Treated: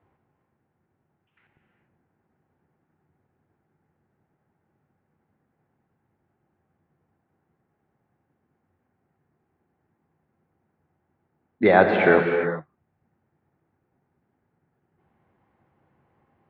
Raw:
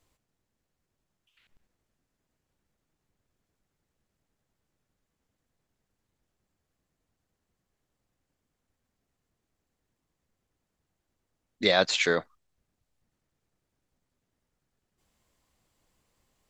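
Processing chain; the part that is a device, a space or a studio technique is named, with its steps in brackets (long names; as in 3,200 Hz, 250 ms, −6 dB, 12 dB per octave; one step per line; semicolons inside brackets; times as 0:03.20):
bass cabinet (loudspeaker in its box 90–2,100 Hz, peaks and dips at 91 Hz +7 dB, 150 Hz +8 dB, 230 Hz +4 dB, 360 Hz +8 dB, 810 Hz +9 dB, 1,500 Hz +3 dB)
reverb whose tail is shaped and stops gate 430 ms flat, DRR 3.5 dB
level +4.5 dB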